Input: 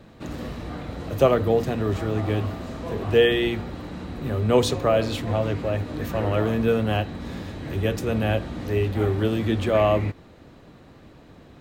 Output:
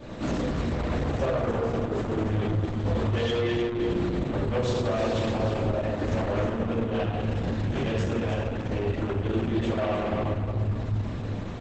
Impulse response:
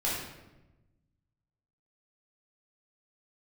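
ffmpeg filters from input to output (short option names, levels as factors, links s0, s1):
-filter_complex "[0:a]asettb=1/sr,asplit=3[s0][s1][s2];[s0]atrim=end=2.384[s3];[s1]atrim=start=2.38:end=3.36,asetpts=PTS-STARTPTS,afade=t=in:d=0.004:c=qsin,afade=t=out:st=0.976:d=0.004:c=qsin,equalizer=f=3400:w=5.1:g=5.5[s4];[s2]atrim=start=3.356[s5];[s3][s4]acrossfade=d=0.004:c1=hsin:c2=qsin[s6];[s6][s5]acrossfade=d=0.004:c1=qsin:c2=hsin[s7];[1:a]atrim=start_sample=2205,asetrate=30429,aresample=44100[s8];[s7][s8]afir=irnorm=-1:irlink=0,acompressor=threshold=0.0794:ratio=6,asoftclip=type=tanh:threshold=0.0708,aecho=1:1:310|620|930|1240:0.422|0.131|0.0405|0.0126,volume=1.19" -ar 48000 -c:a libopus -b:a 10k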